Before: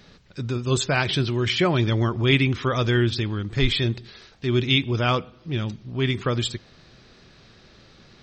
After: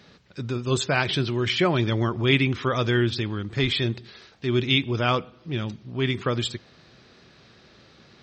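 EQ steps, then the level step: HPF 56 Hz; low shelf 120 Hz -5.5 dB; high shelf 6000 Hz -5 dB; 0.0 dB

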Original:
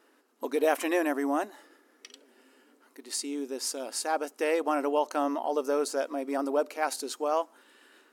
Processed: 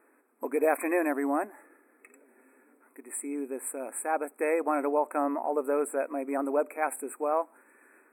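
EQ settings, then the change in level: brick-wall FIR band-stop 2600–7600 Hz; 0.0 dB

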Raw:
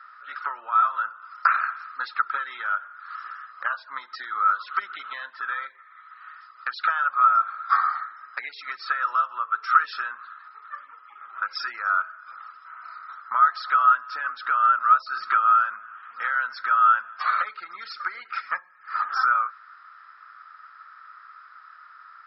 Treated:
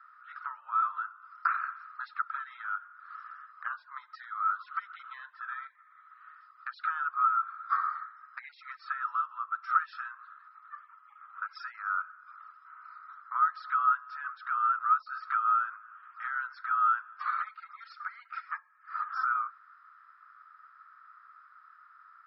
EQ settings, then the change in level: ladder high-pass 920 Hz, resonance 40%; high shelf 3200 Hz -8 dB; -4.0 dB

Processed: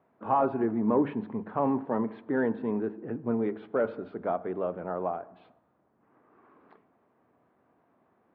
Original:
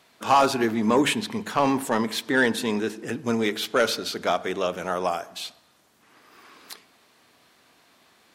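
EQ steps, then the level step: HPF 69 Hz; LPF 1000 Hz 12 dB/oct; air absorption 390 m; -3.0 dB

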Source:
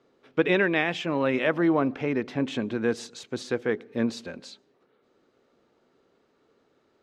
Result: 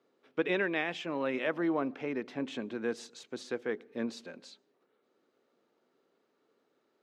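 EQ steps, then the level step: HPF 200 Hz 12 dB/oct; -7.5 dB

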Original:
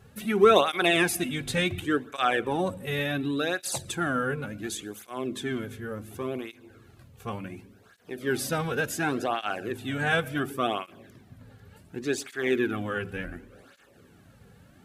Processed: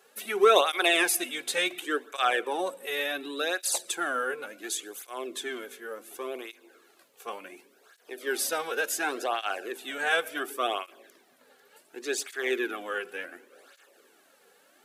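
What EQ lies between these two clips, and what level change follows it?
HPF 370 Hz 24 dB/oct; high shelf 3800 Hz +6 dB; -1.0 dB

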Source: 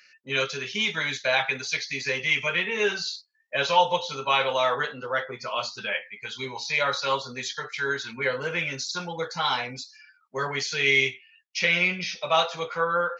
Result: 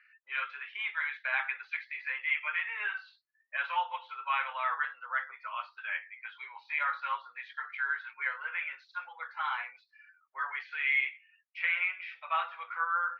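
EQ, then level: HPF 1100 Hz 24 dB/oct; LPF 2200 Hz 24 dB/oct; air absorption 100 m; -2.0 dB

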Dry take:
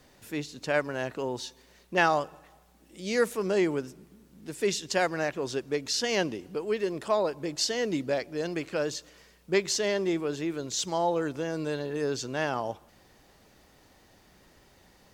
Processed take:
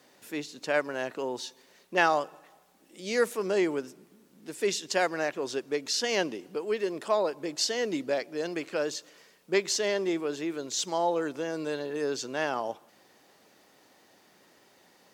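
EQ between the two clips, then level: HPF 240 Hz 12 dB/oct; 0.0 dB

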